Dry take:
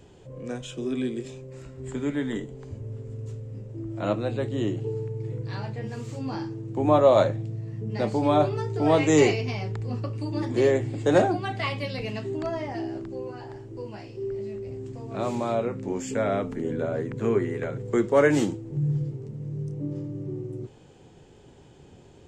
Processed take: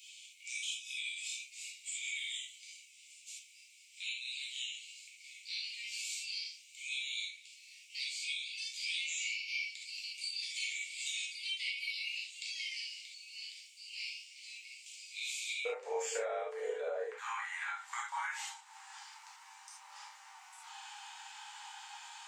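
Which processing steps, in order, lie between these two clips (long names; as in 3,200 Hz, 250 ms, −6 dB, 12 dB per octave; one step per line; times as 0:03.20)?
Chebyshev high-pass filter 2,200 Hz, order 8, from 0:15.65 440 Hz, from 0:17.10 810 Hz
downward compressor 8 to 1, threshold −50 dBFS, peak gain reduction 25.5 dB
reverb whose tail is shaped and stops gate 100 ms flat, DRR −5 dB
level +7.5 dB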